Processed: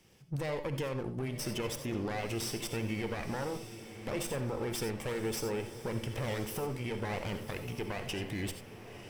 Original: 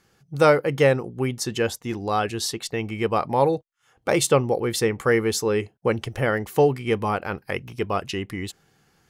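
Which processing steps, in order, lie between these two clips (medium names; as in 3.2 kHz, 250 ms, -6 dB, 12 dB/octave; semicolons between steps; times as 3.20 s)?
comb filter that takes the minimum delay 0.37 ms; compression, threshold -27 dBFS, peak gain reduction 14 dB; peak limiter -28 dBFS, peak gain reduction 11 dB; on a send: echo that smears into a reverb 1059 ms, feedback 40%, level -11 dB; on the sum: gated-style reverb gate 110 ms rising, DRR 8.5 dB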